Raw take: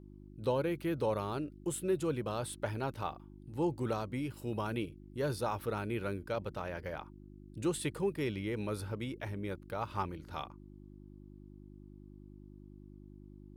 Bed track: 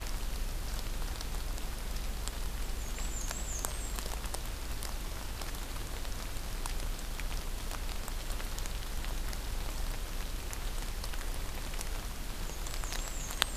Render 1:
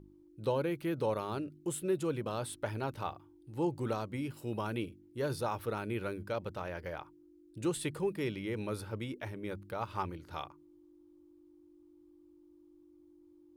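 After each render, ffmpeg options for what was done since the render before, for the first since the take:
-af "bandreject=f=50:t=h:w=4,bandreject=f=100:t=h:w=4,bandreject=f=150:t=h:w=4,bandreject=f=200:t=h:w=4,bandreject=f=250:t=h:w=4"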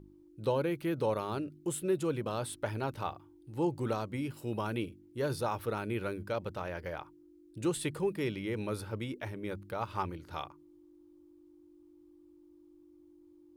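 -af "volume=1.5dB"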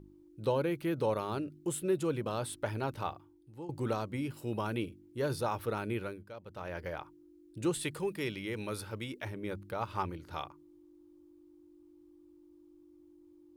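-filter_complex "[0:a]asettb=1/sr,asplit=3[a][b][c];[a]atrim=end=7.834[d];[b]atrim=start=7.83:end=9.25,asetpts=PTS-STARTPTS,afade=t=in:d=0.004:c=qsin,afade=t=out:st=1.416:d=0.004:c=qsin,tiltshelf=f=1.3k:g=-3.5[e];[c]atrim=start=9.246[f];[d][e]acrossfade=d=0.004:c1=hsin:c2=qsin[g];[g][f]acrossfade=d=0.004:c1=qsin:c2=hsin,asplit=4[h][i][j][k];[h]atrim=end=3.69,asetpts=PTS-STARTPTS,afade=t=out:st=3.08:d=0.61:silence=0.133352[l];[i]atrim=start=3.69:end=6.25,asetpts=PTS-STARTPTS,afade=t=in:d=0.004:c=hsin:silence=0.133352,afade=t=out:st=2.24:d=0.32:silence=0.237137[m];[j]atrim=start=6.25:end=6.45,asetpts=PTS-STARTPTS,volume=-12.5dB[n];[k]atrim=start=6.45,asetpts=PTS-STARTPTS,afade=t=in:d=0.32:silence=0.237137[o];[l][m][n][o]concat=n=4:v=0:a=1"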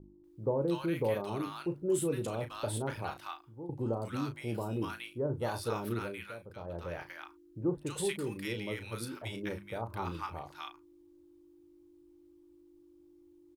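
-filter_complex "[0:a]asplit=2[a][b];[b]adelay=35,volume=-9dB[c];[a][c]amix=inputs=2:normalize=0,acrossover=split=980[d][e];[e]adelay=240[f];[d][f]amix=inputs=2:normalize=0"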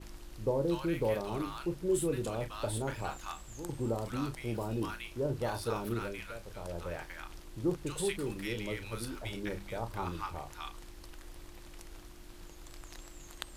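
-filter_complex "[1:a]volume=-12.5dB[a];[0:a][a]amix=inputs=2:normalize=0"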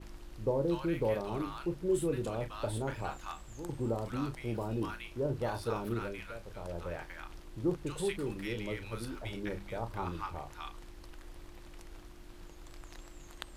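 -af "highshelf=f=4.1k:g=-7"

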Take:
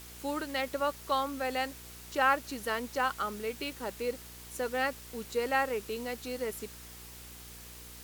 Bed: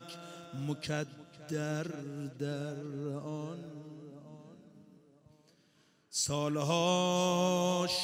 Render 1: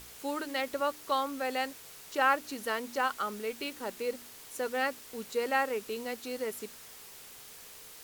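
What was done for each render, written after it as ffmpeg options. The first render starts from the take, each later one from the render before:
-af "bandreject=f=60:t=h:w=4,bandreject=f=120:t=h:w=4,bandreject=f=180:t=h:w=4,bandreject=f=240:t=h:w=4,bandreject=f=300:t=h:w=4,bandreject=f=360:t=h:w=4"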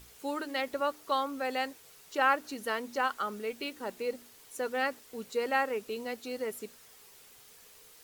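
-af "afftdn=nr=7:nf=-50"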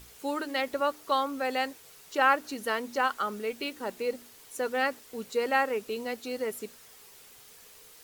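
-af "volume=3dB"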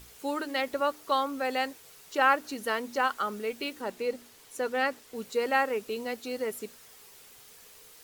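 -filter_complex "[0:a]asettb=1/sr,asplit=3[a][b][c];[a]atrim=end=3.814[d];[b]atrim=start=3.81:end=5.16,asetpts=PTS-STARTPTS,afade=t=in:d=0.004:c=qsin,afade=t=out:st=1.346:d=0.004:c=qsin,highshelf=f=9.3k:g=-5[e];[c]atrim=start=5.156[f];[d][e]acrossfade=d=0.004:c1=hsin:c2=qsin[g];[g][f]acrossfade=d=0.004:c1=qsin:c2=hsin"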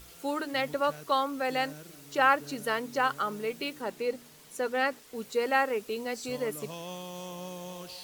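-filter_complex "[1:a]volume=-11.5dB[a];[0:a][a]amix=inputs=2:normalize=0"

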